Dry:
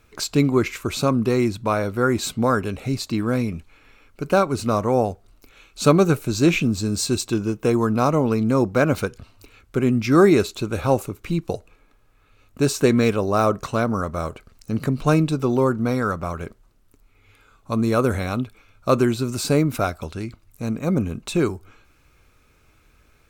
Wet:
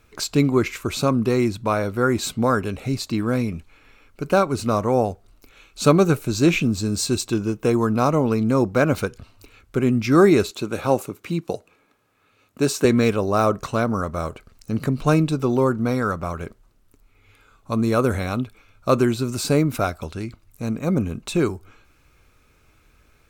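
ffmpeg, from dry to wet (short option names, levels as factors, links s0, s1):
-filter_complex "[0:a]asettb=1/sr,asplit=3[s0][s1][s2];[s0]atrim=end=10.514[s3];[s1]atrim=start=10.51:end=12.85,asetpts=PTS-STARTPTS,afade=t=in:d=0.004:c=qsin,afade=t=out:st=2.336:d=0.004:c=qsin,highpass=150[s4];[s2]atrim=start=12.846[s5];[s3][s4]acrossfade=d=0.004:c1=hsin:c2=qsin[s6];[s6][s5]acrossfade=d=0.004:c1=qsin:c2=hsin"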